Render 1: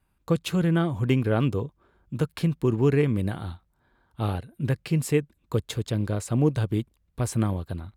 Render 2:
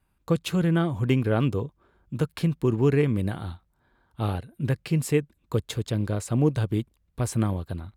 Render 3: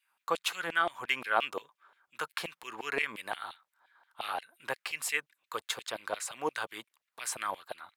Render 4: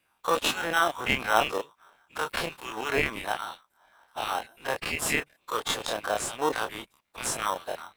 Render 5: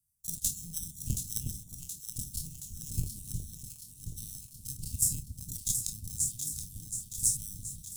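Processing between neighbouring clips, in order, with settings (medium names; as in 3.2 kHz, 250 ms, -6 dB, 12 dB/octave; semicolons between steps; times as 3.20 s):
no audible change
LFO high-pass saw down 5.7 Hz 700–2900 Hz
every event in the spectrogram widened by 60 ms; in parallel at -5.5 dB: sample-and-hold 19×
inverse Chebyshev band-stop 500–2000 Hz, stop band 70 dB; transient shaper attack +10 dB, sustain +6 dB; echo whose repeats swap between lows and highs 362 ms, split 840 Hz, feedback 78%, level -4.5 dB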